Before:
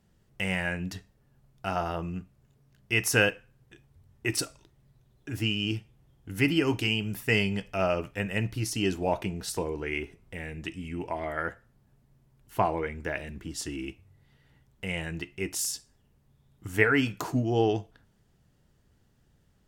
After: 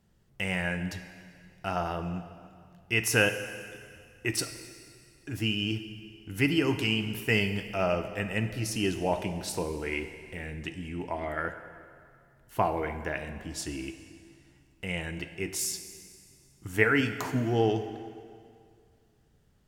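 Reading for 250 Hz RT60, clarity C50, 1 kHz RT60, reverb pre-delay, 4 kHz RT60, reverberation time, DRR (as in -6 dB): 2.2 s, 10.0 dB, 2.2 s, 6 ms, 2.0 s, 2.2 s, 9.0 dB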